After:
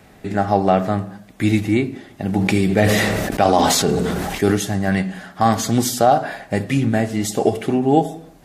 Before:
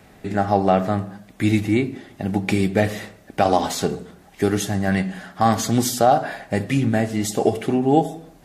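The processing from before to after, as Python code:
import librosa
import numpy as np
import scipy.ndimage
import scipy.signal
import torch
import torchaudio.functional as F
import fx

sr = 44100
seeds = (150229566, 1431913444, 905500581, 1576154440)

y = fx.sustainer(x, sr, db_per_s=21.0, at=(2.24, 4.56))
y = y * 10.0 ** (1.5 / 20.0)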